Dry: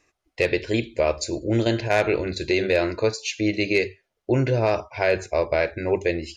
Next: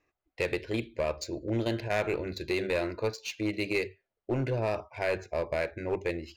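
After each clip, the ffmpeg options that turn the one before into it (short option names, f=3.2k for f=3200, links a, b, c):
-filter_complex "[0:a]acrossover=split=1300[a][b];[a]aeval=exprs='clip(val(0),-1,0.119)':c=same[c];[b]adynamicsmooth=sensitivity=5.5:basefreq=3.6k[d];[c][d]amix=inputs=2:normalize=0,volume=-8dB"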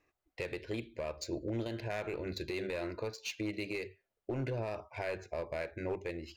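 -af "alimiter=level_in=3.5dB:limit=-24dB:level=0:latency=1:release=285,volume=-3.5dB"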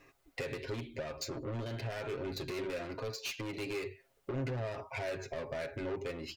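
-af "asoftclip=type=tanh:threshold=-39.5dB,acompressor=threshold=-54dB:ratio=3,aecho=1:1:7.4:0.65,volume=12.5dB"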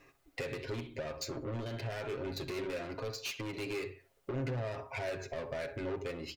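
-filter_complex "[0:a]asplit=2[a][b];[b]adelay=65,lowpass=f=2.2k:p=1,volume=-14dB,asplit=2[c][d];[d]adelay=65,lowpass=f=2.2k:p=1,volume=0.36,asplit=2[e][f];[f]adelay=65,lowpass=f=2.2k:p=1,volume=0.36[g];[a][c][e][g]amix=inputs=4:normalize=0"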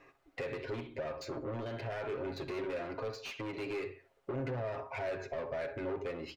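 -filter_complex "[0:a]asplit=2[a][b];[b]highpass=f=720:p=1,volume=10dB,asoftclip=type=tanh:threshold=-28.5dB[c];[a][c]amix=inputs=2:normalize=0,lowpass=f=1.1k:p=1,volume=-6dB,volume=1.5dB"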